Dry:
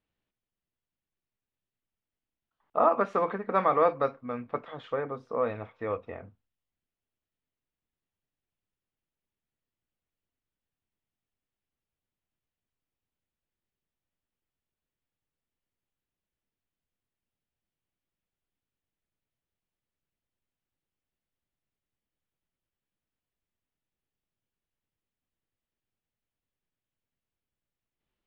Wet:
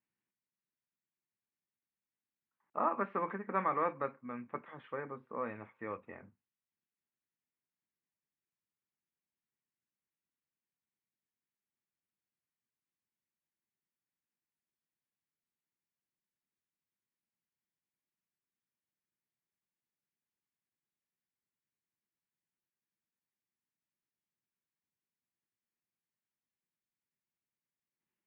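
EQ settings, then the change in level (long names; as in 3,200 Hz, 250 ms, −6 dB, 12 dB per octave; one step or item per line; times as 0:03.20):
high-frequency loss of the air 68 metres
loudspeaker in its box 210–2,300 Hz, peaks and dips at 280 Hz −5 dB, 470 Hz −9 dB, 680 Hz −10 dB, 1,300 Hz −5 dB
parametric band 710 Hz −4 dB 2.3 octaves
0.0 dB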